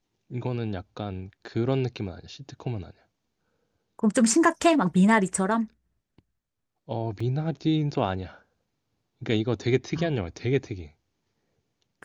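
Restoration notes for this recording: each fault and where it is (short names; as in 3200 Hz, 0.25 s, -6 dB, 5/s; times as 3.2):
7.2 gap 3.9 ms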